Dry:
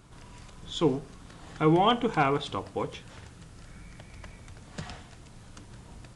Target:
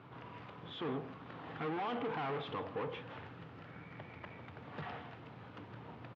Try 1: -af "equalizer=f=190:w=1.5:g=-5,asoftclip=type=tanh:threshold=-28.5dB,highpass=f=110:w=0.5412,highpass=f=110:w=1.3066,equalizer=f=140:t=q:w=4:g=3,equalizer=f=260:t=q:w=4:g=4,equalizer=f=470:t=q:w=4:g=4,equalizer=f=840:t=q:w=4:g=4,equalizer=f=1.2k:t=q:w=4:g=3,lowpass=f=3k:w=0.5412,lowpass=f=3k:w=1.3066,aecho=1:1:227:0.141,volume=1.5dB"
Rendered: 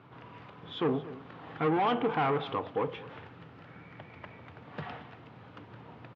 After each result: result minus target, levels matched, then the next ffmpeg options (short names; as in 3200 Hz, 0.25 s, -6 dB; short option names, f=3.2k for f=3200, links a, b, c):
echo 66 ms late; soft clip: distortion -7 dB
-af "equalizer=f=190:w=1.5:g=-5,asoftclip=type=tanh:threshold=-28.5dB,highpass=f=110:w=0.5412,highpass=f=110:w=1.3066,equalizer=f=140:t=q:w=4:g=3,equalizer=f=260:t=q:w=4:g=4,equalizer=f=470:t=q:w=4:g=4,equalizer=f=840:t=q:w=4:g=4,equalizer=f=1.2k:t=q:w=4:g=3,lowpass=f=3k:w=0.5412,lowpass=f=3k:w=1.3066,aecho=1:1:161:0.141,volume=1.5dB"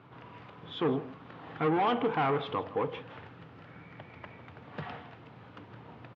soft clip: distortion -7 dB
-af "equalizer=f=190:w=1.5:g=-5,asoftclip=type=tanh:threshold=-40.5dB,highpass=f=110:w=0.5412,highpass=f=110:w=1.3066,equalizer=f=140:t=q:w=4:g=3,equalizer=f=260:t=q:w=4:g=4,equalizer=f=470:t=q:w=4:g=4,equalizer=f=840:t=q:w=4:g=4,equalizer=f=1.2k:t=q:w=4:g=3,lowpass=f=3k:w=0.5412,lowpass=f=3k:w=1.3066,aecho=1:1:161:0.141,volume=1.5dB"